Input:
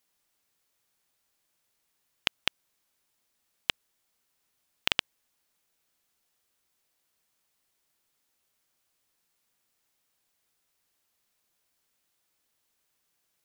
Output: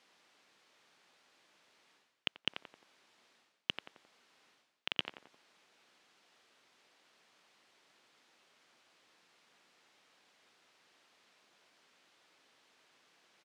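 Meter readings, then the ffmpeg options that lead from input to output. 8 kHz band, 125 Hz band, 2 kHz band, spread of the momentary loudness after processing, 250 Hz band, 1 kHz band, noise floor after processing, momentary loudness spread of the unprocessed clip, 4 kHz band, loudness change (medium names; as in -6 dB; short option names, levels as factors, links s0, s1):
-14.0 dB, -4.5 dB, -8.5 dB, 12 LU, -2.0 dB, -9.0 dB, -78 dBFS, 5 LU, -7.0 dB, -8.5 dB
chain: -filter_complex "[0:a]highpass=220,lowpass=3900,alimiter=limit=0.237:level=0:latency=1:release=13,asplit=2[s0][s1];[s1]adelay=88,lowpass=f=1500:p=1,volume=0.112,asplit=2[s2][s3];[s3]adelay=88,lowpass=f=1500:p=1,volume=0.53,asplit=2[s4][s5];[s5]adelay=88,lowpass=f=1500:p=1,volume=0.53,asplit=2[s6][s7];[s7]adelay=88,lowpass=f=1500:p=1,volume=0.53[s8];[s0][s2][s4][s6][s8]amix=inputs=5:normalize=0,areverse,acompressor=threshold=0.00398:ratio=6,areverse,volume=5.31"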